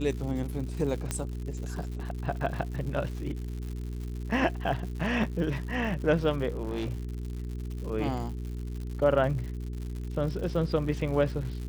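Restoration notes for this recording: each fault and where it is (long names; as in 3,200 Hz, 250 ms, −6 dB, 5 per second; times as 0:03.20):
surface crackle 150 per second −37 dBFS
mains hum 60 Hz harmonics 7 −35 dBFS
0:01.11: click −15 dBFS
0:06.62–0:07.03: clipping −28 dBFS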